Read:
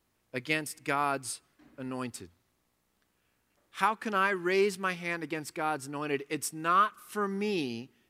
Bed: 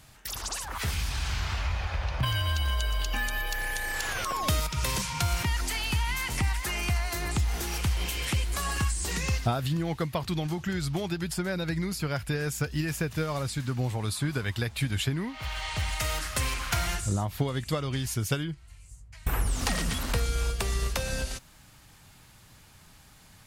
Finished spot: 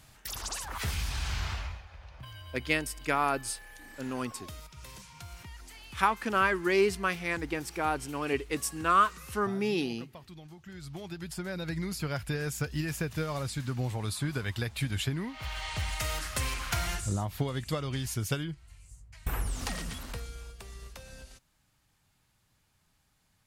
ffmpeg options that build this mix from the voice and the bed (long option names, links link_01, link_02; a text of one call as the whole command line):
ffmpeg -i stem1.wav -i stem2.wav -filter_complex "[0:a]adelay=2200,volume=1.5dB[link_01];[1:a]volume=13dB,afade=type=out:start_time=1.46:duration=0.37:silence=0.158489,afade=type=in:start_time=10.61:duration=1.35:silence=0.16788,afade=type=out:start_time=19.07:duration=1.38:silence=0.199526[link_02];[link_01][link_02]amix=inputs=2:normalize=0" out.wav